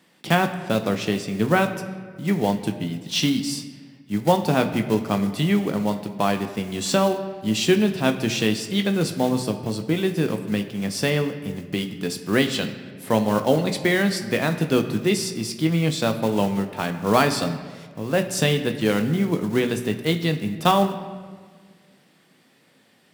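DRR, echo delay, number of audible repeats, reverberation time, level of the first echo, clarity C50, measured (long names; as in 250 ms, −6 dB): 6.0 dB, no echo audible, no echo audible, 1.6 s, no echo audible, 10.5 dB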